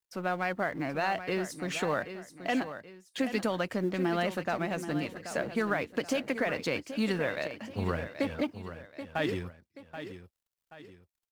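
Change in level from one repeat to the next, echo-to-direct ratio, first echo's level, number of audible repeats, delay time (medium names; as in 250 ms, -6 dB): -8.0 dB, -10.5 dB, -11.0 dB, 2, 780 ms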